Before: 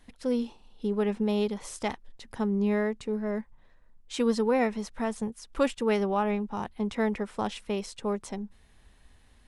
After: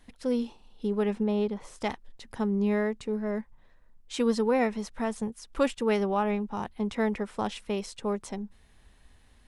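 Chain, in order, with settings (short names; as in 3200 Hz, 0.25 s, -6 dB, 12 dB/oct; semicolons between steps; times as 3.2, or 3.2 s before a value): 1.23–1.81 high shelf 3000 Hz -12 dB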